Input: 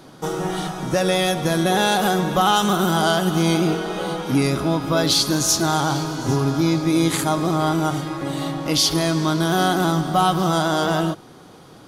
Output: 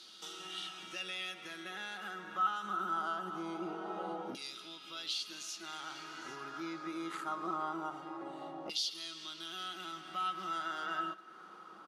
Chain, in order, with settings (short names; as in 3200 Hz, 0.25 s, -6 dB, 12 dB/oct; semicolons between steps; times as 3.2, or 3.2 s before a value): HPF 150 Hz; high shelf 3300 Hz +10 dB; compressor 2:1, threshold -35 dBFS, peak gain reduction 15 dB; LFO band-pass saw down 0.23 Hz 710–4000 Hz; vocal rider within 5 dB 2 s; small resonant body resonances 200/340/1300/2800 Hz, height 14 dB, ringing for 70 ms; speakerphone echo 0.2 s, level -21 dB; gain -6 dB